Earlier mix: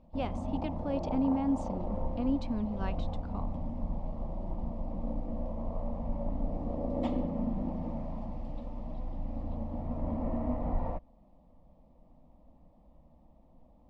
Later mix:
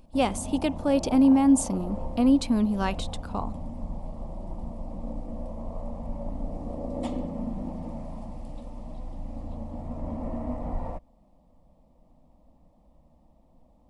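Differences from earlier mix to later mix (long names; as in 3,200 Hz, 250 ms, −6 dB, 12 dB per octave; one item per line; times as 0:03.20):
speech +10.5 dB
master: remove high-frequency loss of the air 180 metres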